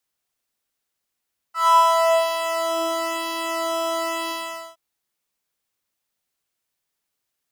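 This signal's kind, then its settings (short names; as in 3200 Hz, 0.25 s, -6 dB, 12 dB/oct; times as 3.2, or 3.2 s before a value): synth patch with pulse-width modulation E5, oscillator 2 square, interval +7 st, detune 17 cents, oscillator 2 level -6.5 dB, sub -22 dB, noise -20.5 dB, filter highpass, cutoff 110 Hz, Q 6.7, filter envelope 3.5 oct, filter decay 1.40 s, attack 0.134 s, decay 0.73 s, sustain -3 dB, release 0.46 s, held 2.76 s, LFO 0.99 Hz, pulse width 19%, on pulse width 11%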